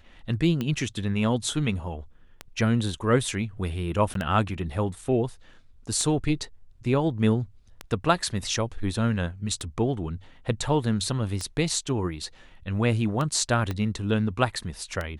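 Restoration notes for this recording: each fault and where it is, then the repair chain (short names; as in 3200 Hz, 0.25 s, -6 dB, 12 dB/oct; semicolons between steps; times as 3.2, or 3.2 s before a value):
tick 33 1/3 rpm -16 dBFS
4.14–4.15 gap 13 ms
13.71 pop -16 dBFS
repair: de-click; interpolate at 4.14, 13 ms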